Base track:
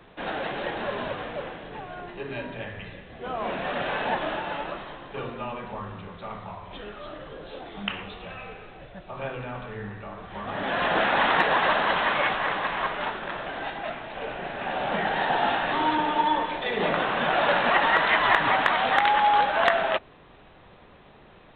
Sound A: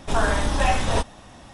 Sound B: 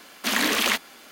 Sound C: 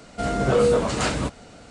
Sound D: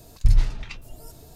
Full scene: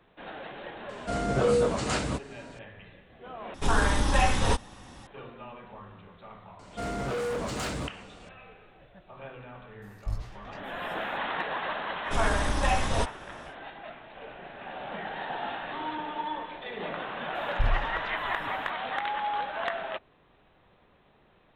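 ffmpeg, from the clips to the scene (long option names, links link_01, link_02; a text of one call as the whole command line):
ffmpeg -i bed.wav -i cue0.wav -i cue1.wav -i cue2.wav -i cue3.wav -filter_complex "[3:a]asplit=2[link_01][link_02];[1:a]asplit=2[link_03][link_04];[4:a]asplit=2[link_05][link_06];[0:a]volume=-10.5dB[link_07];[link_03]bandreject=frequency=650:width=5.4[link_08];[link_02]volume=22.5dB,asoftclip=hard,volume=-22.5dB[link_09];[link_05]flanger=delay=15.5:depth=4.7:speed=2[link_10];[link_06]acrossover=split=3900[link_11][link_12];[link_12]acompressor=threshold=-57dB:ratio=4:attack=1:release=60[link_13];[link_11][link_13]amix=inputs=2:normalize=0[link_14];[link_07]asplit=2[link_15][link_16];[link_15]atrim=end=3.544[link_17];[link_08]atrim=end=1.53,asetpts=PTS-STARTPTS,volume=-2dB[link_18];[link_16]atrim=start=5.066[link_19];[link_01]atrim=end=1.7,asetpts=PTS-STARTPTS,volume=-5dB,afade=type=in:duration=0.004:curve=hsin,afade=type=out:start_time=1.696:duration=0.004:curve=hsin,adelay=890[link_20];[link_09]atrim=end=1.7,asetpts=PTS-STARTPTS,volume=-6.5dB,afade=type=in:duration=0.004:curve=hsin,afade=type=out:start_time=1.696:duration=0.004:curve=hsin,adelay=6590[link_21];[link_10]atrim=end=1.35,asetpts=PTS-STARTPTS,volume=-11.5dB,afade=type=in:duration=0.004:curve=hsin,afade=type=out:start_time=1.346:duration=0.004:curve=hsin,adelay=9820[link_22];[link_04]atrim=end=1.53,asetpts=PTS-STARTPTS,volume=-5dB,afade=type=in:duration=0.1,afade=type=out:start_time=1.43:duration=0.1,adelay=12030[link_23];[link_14]atrim=end=1.35,asetpts=PTS-STARTPTS,volume=-9.5dB,afade=type=in:duration=0.004:curve=hsin,afade=type=out:start_time=1.346:duration=0.004:curve=hsin,adelay=17350[link_24];[link_17][link_18]acrossfade=duration=0.004:curve1=hsin:curve2=hsin[link_25];[link_25][link_19]acrossfade=duration=0.004:curve1=hsin:curve2=hsin[link_26];[link_26][link_20][link_21][link_22][link_23][link_24]amix=inputs=6:normalize=0" out.wav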